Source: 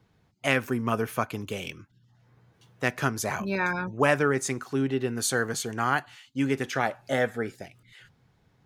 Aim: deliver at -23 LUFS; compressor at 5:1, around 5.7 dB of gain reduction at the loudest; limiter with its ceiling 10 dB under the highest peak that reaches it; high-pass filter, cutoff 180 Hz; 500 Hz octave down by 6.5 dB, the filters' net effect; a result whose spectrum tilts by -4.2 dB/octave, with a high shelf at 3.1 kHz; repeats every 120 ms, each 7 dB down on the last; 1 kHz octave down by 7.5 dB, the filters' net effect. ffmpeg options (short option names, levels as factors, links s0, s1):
-af "highpass=180,equalizer=f=500:t=o:g=-6,equalizer=f=1000:t=o:g=-7.5,highshelf=f=3100:g=-8,acompressor=threshold=0.0316:ratio=5,alimiter=level_in=1.26:limit=0.0631:level=0:latency=1,volume=0.794,aecho=1:1:120|240|360|480|600:0.447|0.201|0.0905|0.0407|0.0183,volume=5.31"